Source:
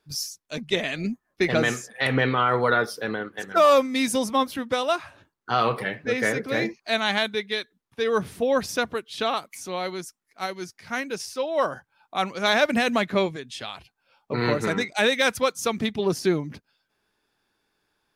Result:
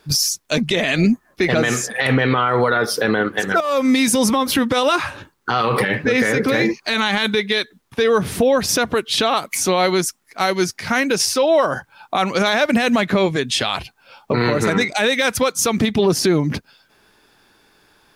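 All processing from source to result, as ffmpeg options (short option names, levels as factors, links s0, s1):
-filter_complex "[0:a]asettb=1/sr,asplit=3[s0][s1][s2];[s0]atrim=end=3.604[s3];[s1]atrim=start=3.6:end=7.39,asetpts=PTS-STARTPTS,afade=t=in:d=0.004:c=qsin,afade=t=out:st=3.786:d=0.004:c=qsin,bandreject=f=670:w=6.2,acompressor=threshold=0.0447:ratio=16:attack=3.2:release=140:knee=1:detection=peak[s4];[s2]atrim=start=7.386[s5];[s3][s4]acrossfade=d=0.004:c1=hsin:c2=qsin[s6];[s6][s5]acrossfade=d=0.004:c1=qsin:c2=hsin,acompressor=threshold=0.0398:ratio=6,alimiter=level_in=16.8:limit=0.891:release=50:level=0:latency=1,volume=0.473"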